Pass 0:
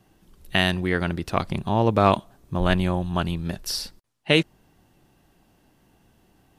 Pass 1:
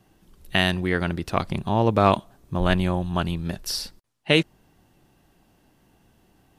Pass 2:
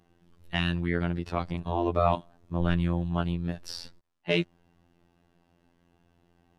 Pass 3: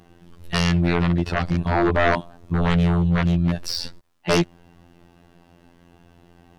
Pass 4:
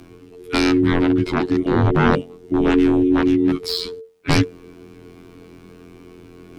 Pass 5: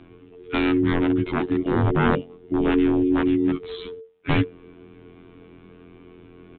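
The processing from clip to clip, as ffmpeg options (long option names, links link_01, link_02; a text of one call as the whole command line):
ffmpeg -i in.wav -af anull out.wav
ffmpeg -i in.wav -af "aemphasis=mode=reproduction:type=50fm,afftfilt=real='hypot(re,im)*cos(PI*b)':imag='0':win_size=2048:overlap=0.75,acontrast=25,volume=-7dB" out.wav
ffmpeg -i in.wav -filter_complex "[0:a]asplit=2[link_01][link_02];[link_02]alimiter=limit=-17.5dB:level=0:latency=1:release=54,volume=0dB[link_03];[link_01][link_03]amix=inputs=2:normalize=0,aeval=exprs='0.531*sin(PI/2*3.16*val(0)/0.531)':channel_layout=same,volume=-6.5dB" out.wav
ffmpeg -i in.wav -af "areverse,acompressor=mode=upward:threshold=-34dB:ratio=2.5,areverse,afreqshift=-450,volume=3dB" out.wav
ffmpeg -i in.wav -af "aresample=8000,aresample=44100,volume=-4dB" out.wav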